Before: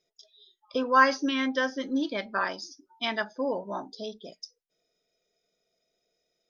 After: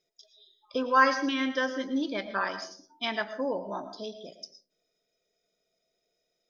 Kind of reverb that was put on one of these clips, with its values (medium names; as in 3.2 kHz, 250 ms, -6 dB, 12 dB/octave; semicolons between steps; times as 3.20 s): algorithmic reverb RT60 0.46 s, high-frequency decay 0.45×, pre-delay 70 ms, DRR 10.5 dB; trim -1.5 dB